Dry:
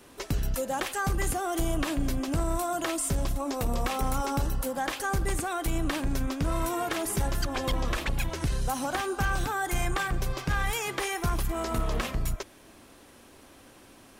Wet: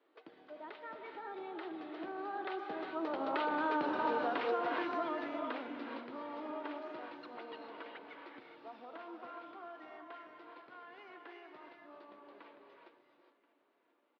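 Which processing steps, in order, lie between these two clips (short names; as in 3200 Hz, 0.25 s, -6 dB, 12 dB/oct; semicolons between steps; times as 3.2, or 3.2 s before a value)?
Doppler pass-by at 3.88, 45 m/s, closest 6.1 m; elliptic band-pass 310–4200 Hz, stop band 70 dB; air absorption 310 m; non-linear reverb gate 0.44 s rising, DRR 2.5 dB; compressor 8:1, threshold -43 dBFS, peak gain reduction 13 dB; on a send: feedback echo 1.031 s, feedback 45%, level -21.5 dB; on the sum: gain +13 dB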